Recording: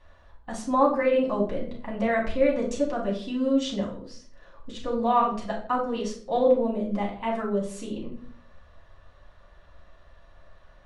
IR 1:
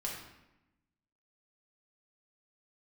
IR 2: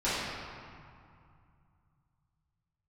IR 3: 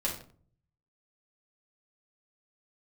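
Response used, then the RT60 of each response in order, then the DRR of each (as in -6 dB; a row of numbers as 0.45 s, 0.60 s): 3; 0.95 s, 2.3 s, 0.50 s; -3.5 dB, -14.0 dB, -4.0 dB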